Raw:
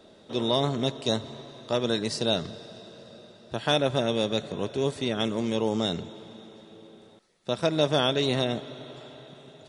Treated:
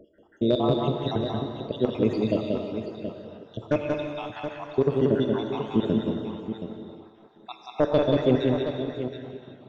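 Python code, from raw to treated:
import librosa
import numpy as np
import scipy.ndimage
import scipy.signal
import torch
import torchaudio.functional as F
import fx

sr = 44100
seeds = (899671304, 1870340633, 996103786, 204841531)

p1 = fx.spec_dropout(x, sr, seeds[0], share_pct=76)
p2 = fx.peak_eq(p1, sr, hz=320.0, db=3.0, octaves=0.87)
p3 = fx.rider(p2, sr, range_db=3, speed_s=2.0)
p4 = p2 + (p3 * librosa.db_to_amplitude(1.0))
p5 = 10.0 ** (-9.5 / 20.0) * (np.abs((p4 / 10.0 ** (-9.5 / 20.0) + 3.0) % 4.0 - 2.0) - 1.0)
p6 = fx.spacing_loss(p5, sr, db_at_10k=36)
p7 = fx.echo_multitap(p6, sr, ms=(182, 528, 724), db=(-3.5, -17.5, -9.5))
y = fx.rev_gated(p7, sr, seeds[1], gate_ms=390, shape='flat', drr_db=4.5)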